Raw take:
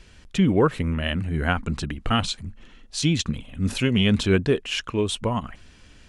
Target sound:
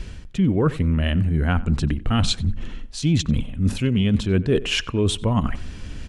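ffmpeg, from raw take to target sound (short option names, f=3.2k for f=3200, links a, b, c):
-filter_complex "[0:a]lowshelf=f=340:g=10.5,areverse,acompressor=threshold=-26dB:ratio=5,areverse,asplit=2[a][b];[b]adelay=92,lowpass=f=2.6k:p=1,volume=-18.5dB,asplit=2[c][d];[d]adelay=92,lowpass=f=2.6k:p=1,volume=0.34,asplit=2[e][f];[f]adelay=92,lowpass=f=2.6k:p=1,volume=0.34[g];[a][c][e][g]amix=inputs=4:normalize=0,volume=8dB"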